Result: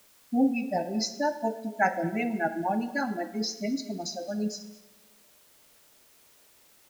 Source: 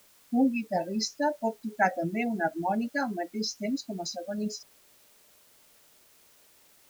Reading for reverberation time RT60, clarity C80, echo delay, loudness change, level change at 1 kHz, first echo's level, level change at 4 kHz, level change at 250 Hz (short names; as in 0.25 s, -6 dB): 1.1 s, 13.0 dB, 0.222 s, +0.5 dB, +0.5 dB, -20.5 dB, +0.5 dB, +0.5 dB